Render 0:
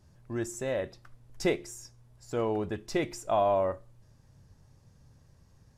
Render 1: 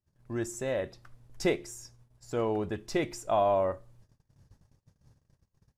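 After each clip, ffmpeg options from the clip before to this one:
-af "agate=range=-26dB:threshold=-56dB:ratio=16:detection=peak"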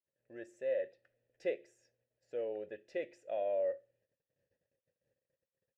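-filter_complex "[0:a]asplit=3[a][b][c];[a]bandpass=f=530:t=q:w=8,volume=0dB[d];[b]bandpass=f=1.84k:t=q:w=8,volume=-6dB[e];[c]bandpass=f=2.48k:t=q:w=8,volume=-9dB[f];[d][e][f]amix=inputs=3:normalize=0"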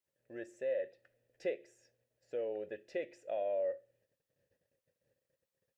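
-af "acompressor=threshold=-43dB:ratio=1.5,volume=3.5dB"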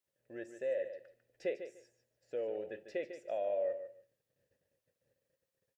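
-af "aecho=1:1:148|296:0.299|0.0537"

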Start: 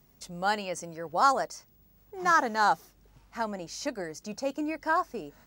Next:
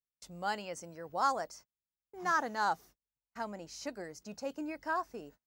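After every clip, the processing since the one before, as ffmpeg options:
-af "agate=range=-37dB:threshold=-47dB:ratio=16:detection=peak,volume=-7.5dB"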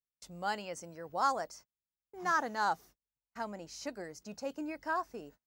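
-af anull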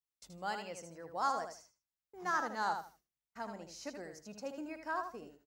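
-af "aecho=1:1:78|156|234:0.447|0.0938|0.0197,volume=-4dB"

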